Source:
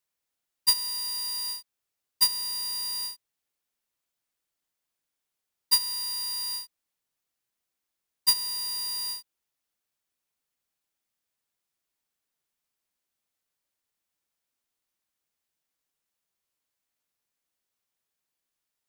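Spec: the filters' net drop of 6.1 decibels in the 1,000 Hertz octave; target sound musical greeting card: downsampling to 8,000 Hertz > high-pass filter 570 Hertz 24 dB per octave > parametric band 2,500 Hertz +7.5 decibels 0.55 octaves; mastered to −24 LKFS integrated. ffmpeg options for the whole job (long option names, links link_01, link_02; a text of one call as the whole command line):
ffmpeg -i in.wav -af "equalizer=frequency=1000:width_type=o:gain=-6.5,aresample=8000,aresample=44100,highpass=frequency=570:width=0.5412,highpass=frequency=570:width=1.3066,equalizer=frequency=2500:width_type=o:width=0.55:gain=7.5,volume=21dB" out.wav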